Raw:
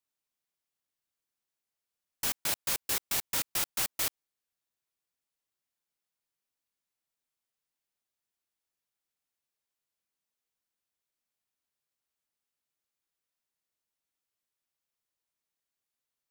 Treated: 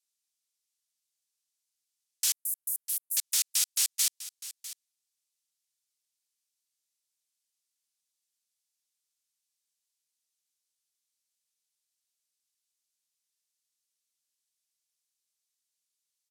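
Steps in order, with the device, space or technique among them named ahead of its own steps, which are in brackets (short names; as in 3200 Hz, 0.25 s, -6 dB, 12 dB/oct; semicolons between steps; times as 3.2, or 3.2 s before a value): 2.33–3.17 inverse Chebyshev band-stop 210–2200 Hz, stop band 80 dB; piezo pickup straight into a mixer (LPF 6100 Hz 12 dB/oct; differentiator); tilt +4 dB/oct; echo 0.65 s -15 dB; gain +2.5 dB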